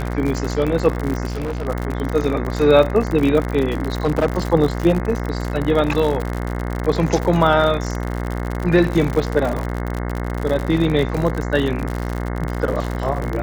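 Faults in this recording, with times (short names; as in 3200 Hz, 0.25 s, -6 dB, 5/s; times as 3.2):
buzz 60 Hz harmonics 36 -24 dBFS
crackle 75/s -22 dBFS
1.26–1.68 clipped -21 dBFS
4.05–4.26 clipped -12 dBFS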